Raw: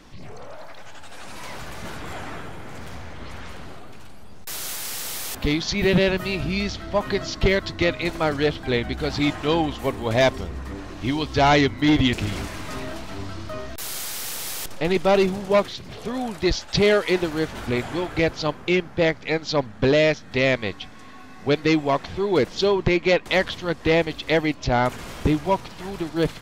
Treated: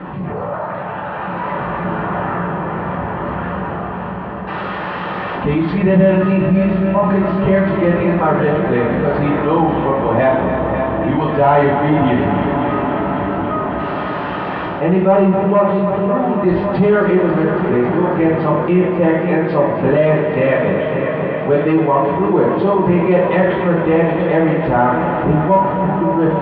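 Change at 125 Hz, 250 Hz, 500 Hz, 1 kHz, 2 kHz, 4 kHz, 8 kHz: +10.0 dB, +9.5 dB, +8.5 dB, +11.0 dB, +3.0 dB, -9.0 dB, under -35 dB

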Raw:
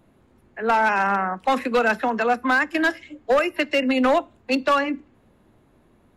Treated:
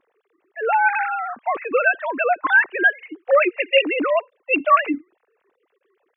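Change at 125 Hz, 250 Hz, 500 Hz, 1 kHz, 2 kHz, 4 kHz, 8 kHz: n/a, -5.0 dB, +1.5 dB, +1.0 dB, +4.5 dB, +1.5 dB, under -35 dB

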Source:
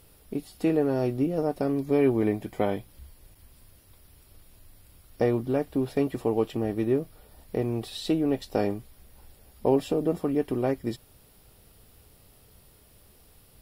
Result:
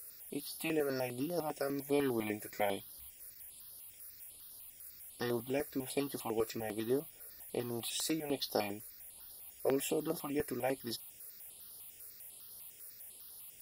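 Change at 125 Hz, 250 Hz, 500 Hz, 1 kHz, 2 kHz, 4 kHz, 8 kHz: -14.5, -12.0, -10.0, -7.0, -2.5, 0.0, +7.0 dB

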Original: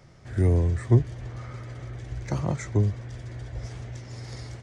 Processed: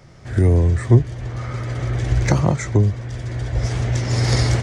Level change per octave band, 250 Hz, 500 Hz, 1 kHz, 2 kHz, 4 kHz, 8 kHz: +8.0 dB, +8.0 dB, +11.5 dB, +13.5 dB, +17.5 dB, n/a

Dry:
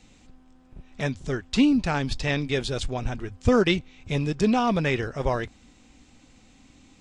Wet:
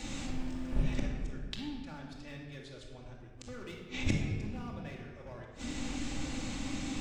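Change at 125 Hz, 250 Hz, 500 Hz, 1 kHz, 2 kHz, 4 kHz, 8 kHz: -9.5, -13.5, -20.0, -18.0, -13.5, -11.5, -4.5 dB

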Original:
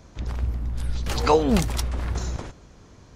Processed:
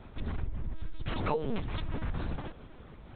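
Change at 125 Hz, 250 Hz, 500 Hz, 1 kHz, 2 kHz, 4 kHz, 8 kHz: -9.5 dB, -11.5 dB, -12.5 dB, -12.0 dB, -8.5 dB, -13.0 dB, under -40 dB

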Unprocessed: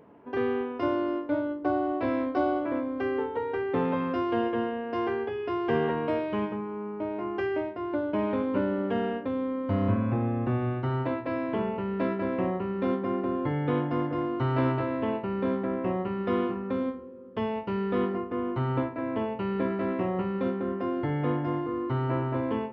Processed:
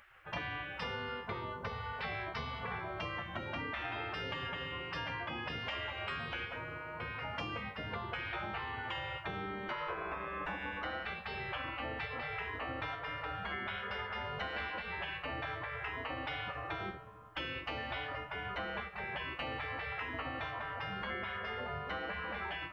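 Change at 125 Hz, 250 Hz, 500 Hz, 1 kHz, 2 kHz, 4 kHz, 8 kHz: -14.5 dB, -21.0 dB, -16.5 dB, -7.0 dB, +2.0 dB, +5.5 dB, n/a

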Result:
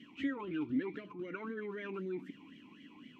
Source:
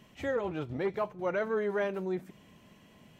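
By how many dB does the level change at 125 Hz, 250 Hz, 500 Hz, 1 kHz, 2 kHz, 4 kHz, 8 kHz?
-8.5 dB, +0.5 dB, -11.5 dB, -10.5 dB, -6.5 dB, -2.5 dB, n/a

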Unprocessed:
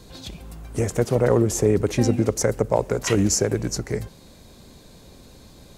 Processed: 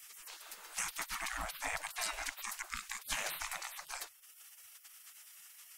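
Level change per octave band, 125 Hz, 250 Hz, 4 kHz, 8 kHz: -38.0, -38.0, -8.5, -13.0 dB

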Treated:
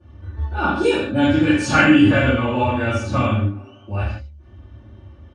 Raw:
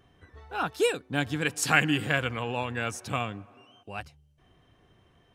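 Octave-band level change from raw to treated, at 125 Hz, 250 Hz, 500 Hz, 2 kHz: +13.5, +16.5, +10.0, +7.0 dB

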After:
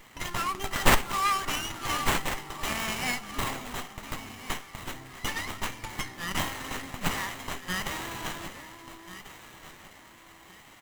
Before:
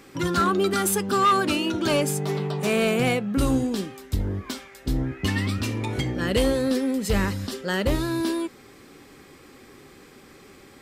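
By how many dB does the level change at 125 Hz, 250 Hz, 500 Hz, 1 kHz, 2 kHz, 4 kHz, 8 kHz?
-11.5, -14.5, -14.0, -3.5, -1.0, -2.0, -2.5 dB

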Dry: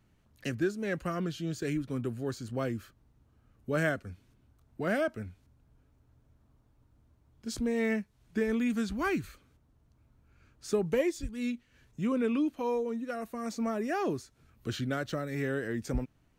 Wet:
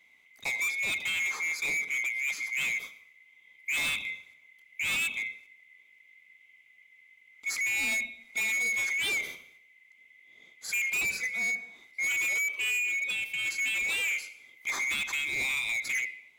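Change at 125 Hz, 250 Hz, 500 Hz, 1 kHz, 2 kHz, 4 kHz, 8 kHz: under -15 dB, -22.5 dB, -19.5 dB, -7.5 dB, +12.5 dB, +12.0 dB, +13.0 dB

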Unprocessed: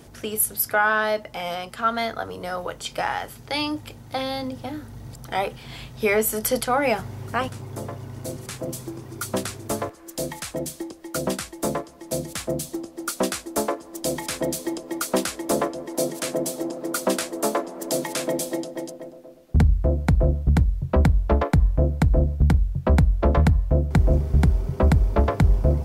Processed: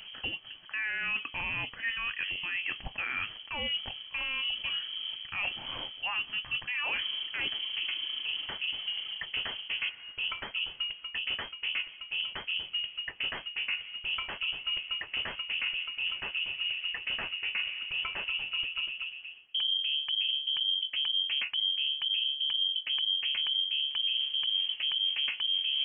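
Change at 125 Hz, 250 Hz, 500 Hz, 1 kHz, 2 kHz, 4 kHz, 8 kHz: -33.5 dB, -29.5 dB, -28.0 dB, -17.5 dB, -2.0 dB, +9.5 dB, under -40 dB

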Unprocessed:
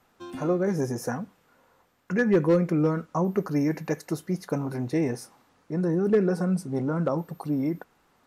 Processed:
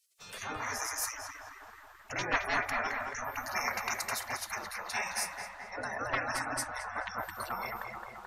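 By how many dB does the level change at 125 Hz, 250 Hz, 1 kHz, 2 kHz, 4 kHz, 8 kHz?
-22.0, -23.5, +2.0, +4.5, +8.0, +8.0 dB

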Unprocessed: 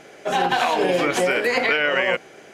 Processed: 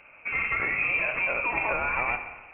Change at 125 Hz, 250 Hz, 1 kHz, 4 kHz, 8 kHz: -7.5 dB, -16.0 dB, -9.5 dB, under -20 dB, under -40 dB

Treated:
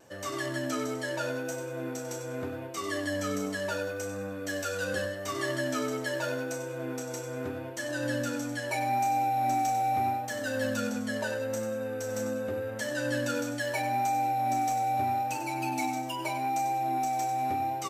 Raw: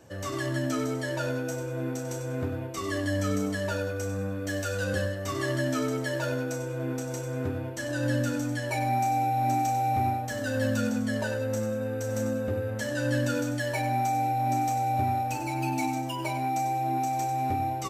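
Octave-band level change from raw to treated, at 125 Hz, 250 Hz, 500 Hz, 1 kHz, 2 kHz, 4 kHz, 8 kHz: -9.5, -4.0, -1.5, -0.5, 0.0, 0.0, 0.0 dB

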